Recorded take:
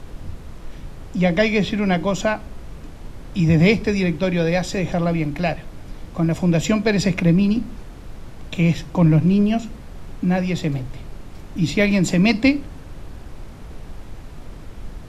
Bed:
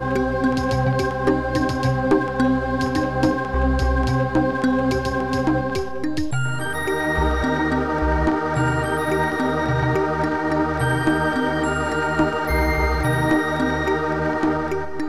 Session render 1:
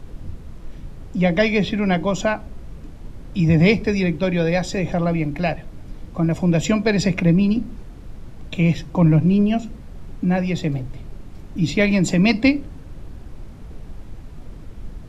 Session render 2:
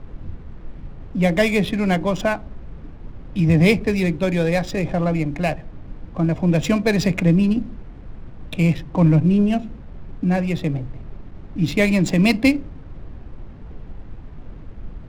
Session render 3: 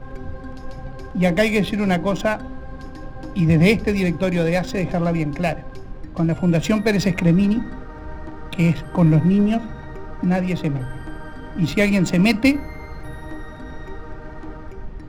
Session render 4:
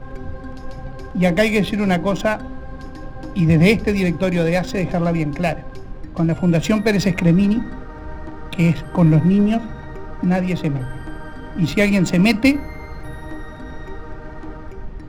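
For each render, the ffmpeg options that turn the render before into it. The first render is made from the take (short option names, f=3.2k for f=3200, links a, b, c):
-af "afftdn=nr=6:nf=-38"
-af "acrusher=bits=7:mix=0:aa=0.000001,adynamicsmooth=sensitivity=6:basefreq=1.5k"
-filter_complex "[1:a]volume=-17.5dB[a];[0:a][a]amix=inputs=2:normalize=0"
-af "volume=1.5dB"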